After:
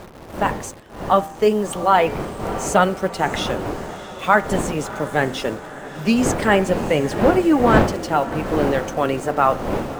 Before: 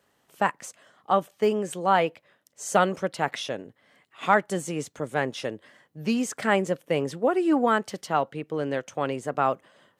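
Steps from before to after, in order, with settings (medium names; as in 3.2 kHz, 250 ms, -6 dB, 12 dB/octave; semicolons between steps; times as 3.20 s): coarse spectral quantiser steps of 15 dB; wind noise 590 Hz -33 dBFS; level rider gain up to 7 dB; in parallel at -5 dB: word length cut 6-bit, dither none; on the sum: de-hum 87.2 Hz, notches 28; on a send: echo that smears into a reverb 657 ms, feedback 62%, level -15 dB; on the sum: trim -2.5 dB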